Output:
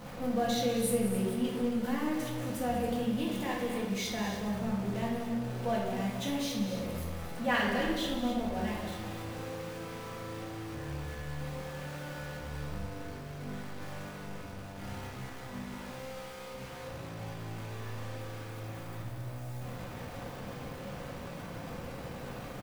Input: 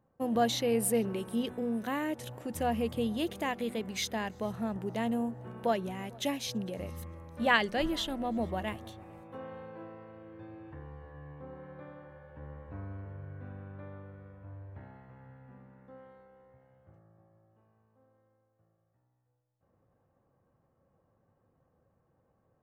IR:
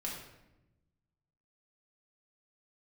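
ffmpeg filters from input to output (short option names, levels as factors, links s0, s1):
-filter_complex "[0:a]aeval=exprs='val(0)+0.5*0.0224*sgn(val(0))':c=same,aecho=1:1:186.6|274.1:0.251|0.282[s0];[1:a]atrim=start_sample=2205[s1];[s0][s1]afir=irnorm=-1:irlink=0,volume=0.531"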